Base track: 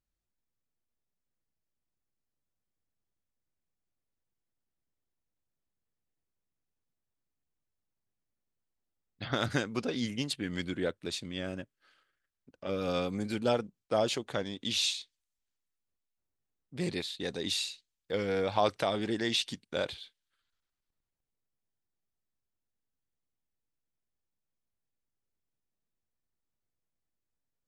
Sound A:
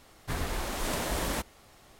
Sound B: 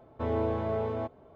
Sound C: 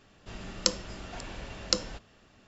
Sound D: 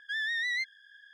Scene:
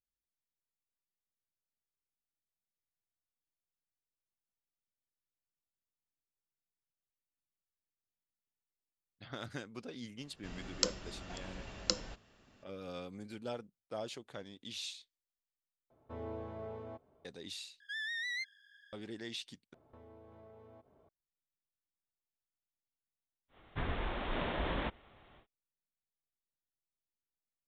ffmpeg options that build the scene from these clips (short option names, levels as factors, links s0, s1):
-filter_complex "[2:a]asplit=2[s0][s1];[0:a]volume=0.224[s2];[4:a]bass=f=250:g=-5,treble=f=4000:g=5[s3];[s1]acompressor=threshold=0.00708:ratio=6:attack=3.2:release=140:knee=1:detection=peak[s4];[1:a]aresample=8000,aresample=44100[s5];[s2]asplit=4[s6][s7][s8][s9];[s6]atrim=end=15.904[s10];[s0]atrim=end=1.35,asetpts=PTS-STARTPTS,volume=0.2[s11];[s7]atrim=start=17.246:end=17.804[s12];[s3]atrim=end=1.13,asetpts=PTS-STARTPTS,volume=0.398[s13];[s8]atrim=start=18.926:end=19.744[s14];[s4]atrim=end=1.35,asetpts=PTS-STARTPTS,volume=0.251[s15];[s9]atrim=start=21.086[s16];[3:a]atrim=end=2.47,asetpts=PTS-STARTPTS,volume=0.501,afade=t=in:d=0.004:c=hsin,afade=t=out:st=2.466:d=0.004:c=hsin,adelay=10170[s17];[s5]atrim=end=1.99,asetpts=PTS-STARTPTS,volume=0.631,afade=t=in:d=0.1,afade=t=out:st=1.89:d=0.1,adelay=23480[s18];[s10][s11]acrossfade=d=0.004:c1=hsin:c2=hsin[s19];[s19][s12]acrossfade=d=0.004:c1=hsin:c2=hsin[s20];[s20][s13]acrossfade=d=0.004:c1=hsin:c2=hsin[s21];[s21][s14]acrossfade=d=0.004:c1=hsin:c2=hsin[s22];[s22][s15]acrossfade=d=0.004:c1=hsin:c2=hsin[s23];[s23][s16]acrossfade=d=0.004:c1=hsin:c2=hsin[s24];[s24][s17][s18]amix=inputs=3:normalize=0"